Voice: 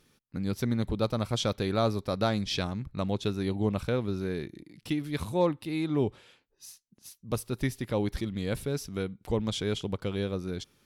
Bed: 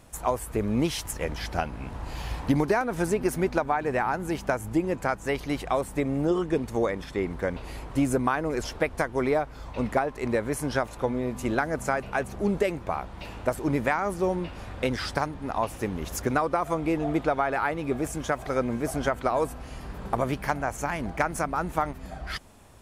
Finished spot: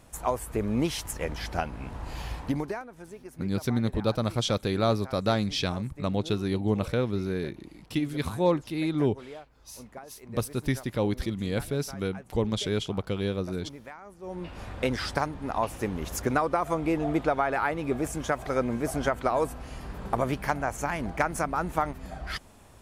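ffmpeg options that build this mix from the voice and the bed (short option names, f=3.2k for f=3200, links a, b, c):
-filter_complex "[0:a]adelay=3050,volume=2dB[a];[1:a]volume=17dB,afade=t=out:st=2.21:d=0.71:silence=0.133352,afade=t=in:st=14.22:d=0.4:silence=0.11885[b];[a][b]amix=inputs=2:normalize=0"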